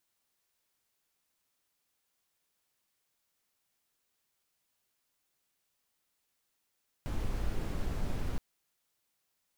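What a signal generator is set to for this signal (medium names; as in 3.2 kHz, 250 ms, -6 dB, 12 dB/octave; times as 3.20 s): noise brown, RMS -32 dBFS 1.32 s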